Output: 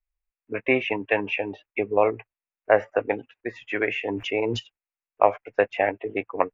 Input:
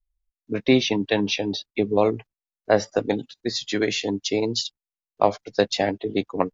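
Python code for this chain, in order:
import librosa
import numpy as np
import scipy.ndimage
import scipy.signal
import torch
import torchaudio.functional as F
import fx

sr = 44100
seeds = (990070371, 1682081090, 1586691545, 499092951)

y = fx.curve_eq(x, sr, hz=(110.0, 170.0, 530.0, 1300.0, 2600.0, 4200.0, 8400.0), db=(0, -7, 8, 10, 12, -27, -15))
y = fx.sustainer(y, sr, db_per_s=22.0, at=(4.08, 4.58), fade=0.02)
y = F.gain(torch.from_numpy(y), -7.5).numpy()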